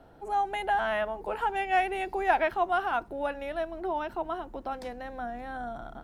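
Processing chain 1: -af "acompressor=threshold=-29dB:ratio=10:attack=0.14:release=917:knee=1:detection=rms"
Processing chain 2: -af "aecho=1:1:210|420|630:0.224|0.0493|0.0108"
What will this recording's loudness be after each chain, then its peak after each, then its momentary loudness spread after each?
−38.5, −30.5 LKFS; −27.0, −11.0 dBFS; 4, 11 LU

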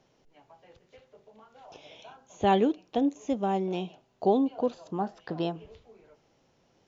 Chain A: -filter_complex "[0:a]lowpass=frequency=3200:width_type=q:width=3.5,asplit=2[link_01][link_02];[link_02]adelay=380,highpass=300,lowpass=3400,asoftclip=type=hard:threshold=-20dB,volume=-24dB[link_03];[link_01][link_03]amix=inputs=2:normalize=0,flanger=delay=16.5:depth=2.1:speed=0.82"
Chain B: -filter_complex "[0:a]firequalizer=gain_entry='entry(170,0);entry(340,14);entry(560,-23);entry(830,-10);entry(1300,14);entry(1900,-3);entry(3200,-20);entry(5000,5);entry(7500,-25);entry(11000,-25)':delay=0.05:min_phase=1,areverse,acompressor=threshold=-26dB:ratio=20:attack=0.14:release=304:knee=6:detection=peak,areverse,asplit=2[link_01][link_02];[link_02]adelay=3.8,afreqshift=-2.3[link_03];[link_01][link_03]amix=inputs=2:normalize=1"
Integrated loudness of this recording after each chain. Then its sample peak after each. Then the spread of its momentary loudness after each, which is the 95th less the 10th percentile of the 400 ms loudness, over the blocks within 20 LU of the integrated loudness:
−31.0, −37.5 LKFS; −14.5, −25.0 dBFS; 18, 21 LU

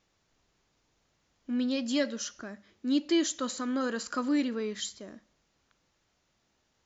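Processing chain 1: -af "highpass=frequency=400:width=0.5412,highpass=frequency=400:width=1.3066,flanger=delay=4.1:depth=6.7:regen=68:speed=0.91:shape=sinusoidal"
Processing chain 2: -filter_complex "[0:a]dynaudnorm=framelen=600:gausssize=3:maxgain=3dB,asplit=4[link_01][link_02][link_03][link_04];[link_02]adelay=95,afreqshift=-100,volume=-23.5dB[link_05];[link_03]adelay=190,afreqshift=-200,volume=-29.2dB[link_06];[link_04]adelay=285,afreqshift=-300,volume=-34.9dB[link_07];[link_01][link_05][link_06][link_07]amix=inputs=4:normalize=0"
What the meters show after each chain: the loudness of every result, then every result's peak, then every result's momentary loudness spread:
−40.0, −28.0 LKFS; −23.0, −13.5 dBFS; 16, 17 LU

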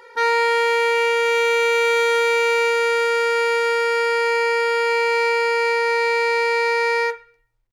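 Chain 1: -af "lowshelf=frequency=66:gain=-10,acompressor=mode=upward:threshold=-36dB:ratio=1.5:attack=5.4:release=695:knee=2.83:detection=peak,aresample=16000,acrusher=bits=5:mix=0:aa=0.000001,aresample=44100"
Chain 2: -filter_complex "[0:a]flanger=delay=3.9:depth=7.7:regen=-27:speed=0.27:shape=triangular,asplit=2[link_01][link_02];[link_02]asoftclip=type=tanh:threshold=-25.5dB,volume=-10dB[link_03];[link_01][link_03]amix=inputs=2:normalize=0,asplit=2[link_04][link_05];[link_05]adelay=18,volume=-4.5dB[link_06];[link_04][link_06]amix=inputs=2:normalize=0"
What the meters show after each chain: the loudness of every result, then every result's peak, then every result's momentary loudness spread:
−18.5, −20.0 LKFS; −7.5, −9.5 dBFS; 2, 2 LU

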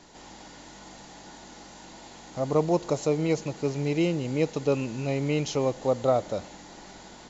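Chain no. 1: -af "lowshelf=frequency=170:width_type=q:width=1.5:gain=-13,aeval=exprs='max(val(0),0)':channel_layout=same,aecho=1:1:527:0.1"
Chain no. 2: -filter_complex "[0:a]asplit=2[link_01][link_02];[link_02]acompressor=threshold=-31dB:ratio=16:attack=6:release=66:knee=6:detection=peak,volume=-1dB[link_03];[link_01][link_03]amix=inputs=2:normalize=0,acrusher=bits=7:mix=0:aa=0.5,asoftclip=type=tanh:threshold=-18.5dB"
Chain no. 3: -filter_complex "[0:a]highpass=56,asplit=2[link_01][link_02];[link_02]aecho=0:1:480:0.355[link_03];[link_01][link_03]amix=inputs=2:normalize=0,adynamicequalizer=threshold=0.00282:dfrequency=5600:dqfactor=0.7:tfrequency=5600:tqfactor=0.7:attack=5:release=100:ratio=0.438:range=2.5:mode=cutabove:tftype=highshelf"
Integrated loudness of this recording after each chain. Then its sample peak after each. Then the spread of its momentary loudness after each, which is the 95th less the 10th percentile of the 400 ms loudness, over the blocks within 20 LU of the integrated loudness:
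−30.0, −27.0, −27.0 LKFS; −9.0, −18.5, −10.0 dBFS; 21, 14, 20 LU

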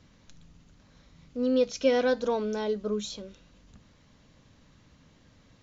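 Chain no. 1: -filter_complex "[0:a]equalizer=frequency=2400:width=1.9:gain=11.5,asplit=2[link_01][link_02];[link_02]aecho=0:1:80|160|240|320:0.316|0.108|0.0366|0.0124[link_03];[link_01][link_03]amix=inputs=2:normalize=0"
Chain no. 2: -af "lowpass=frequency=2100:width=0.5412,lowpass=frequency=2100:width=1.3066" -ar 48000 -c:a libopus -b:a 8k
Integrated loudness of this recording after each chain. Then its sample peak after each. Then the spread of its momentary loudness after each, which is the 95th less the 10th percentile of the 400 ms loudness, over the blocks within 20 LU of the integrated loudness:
−27.0, −28.5 LKFS; −10.5, −13.0 dBFS; 16, 16 LU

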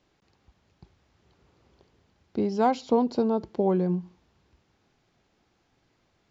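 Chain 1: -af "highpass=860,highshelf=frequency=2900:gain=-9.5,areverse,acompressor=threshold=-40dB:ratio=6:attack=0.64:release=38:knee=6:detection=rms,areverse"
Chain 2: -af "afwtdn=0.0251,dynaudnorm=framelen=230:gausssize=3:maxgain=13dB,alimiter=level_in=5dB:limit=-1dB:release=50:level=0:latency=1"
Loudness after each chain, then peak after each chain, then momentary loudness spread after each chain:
−47.0, −12.5 LKFS; −35.0, −1.0 dBFS; 6, 5 LU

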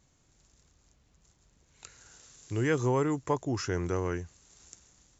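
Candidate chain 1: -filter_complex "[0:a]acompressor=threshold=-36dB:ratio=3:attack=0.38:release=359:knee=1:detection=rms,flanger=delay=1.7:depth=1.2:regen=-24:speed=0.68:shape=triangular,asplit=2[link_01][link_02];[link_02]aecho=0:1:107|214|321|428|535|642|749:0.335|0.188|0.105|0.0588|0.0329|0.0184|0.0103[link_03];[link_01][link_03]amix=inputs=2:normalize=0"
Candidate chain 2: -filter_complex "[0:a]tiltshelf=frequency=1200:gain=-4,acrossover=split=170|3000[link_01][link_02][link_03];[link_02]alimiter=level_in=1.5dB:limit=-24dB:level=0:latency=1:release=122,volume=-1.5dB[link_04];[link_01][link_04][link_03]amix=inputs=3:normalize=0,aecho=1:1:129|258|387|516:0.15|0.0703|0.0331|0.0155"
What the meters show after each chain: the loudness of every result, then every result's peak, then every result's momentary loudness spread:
−45.0, −35.0 LKFS; −30.5, −20.5 dBFS; 17, 17 LU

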